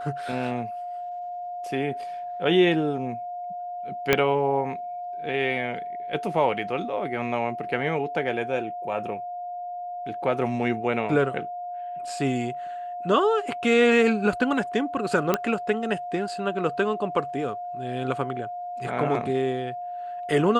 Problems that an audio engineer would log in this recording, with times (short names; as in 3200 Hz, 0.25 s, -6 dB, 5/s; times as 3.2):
tone 710 Hz -31 dBFS
4.13 pop -4 dBFS
15.34 pop -7 dBFS